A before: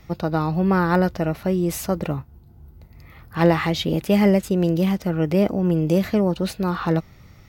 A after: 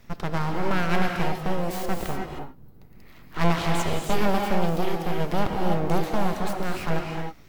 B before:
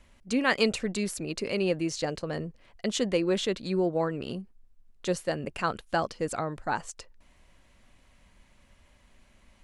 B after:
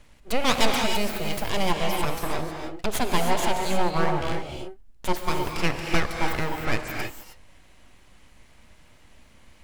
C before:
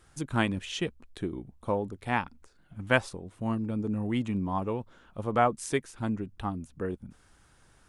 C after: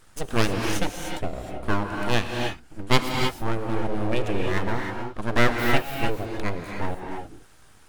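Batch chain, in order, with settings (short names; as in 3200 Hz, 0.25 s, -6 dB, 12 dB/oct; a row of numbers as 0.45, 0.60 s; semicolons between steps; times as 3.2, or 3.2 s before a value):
full-wave rectifier; non-linear reverb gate 0.34 s rising, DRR 2 dB; match loudness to -27 LUFS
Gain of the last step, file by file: -3.0, +5.5, +7.0 dB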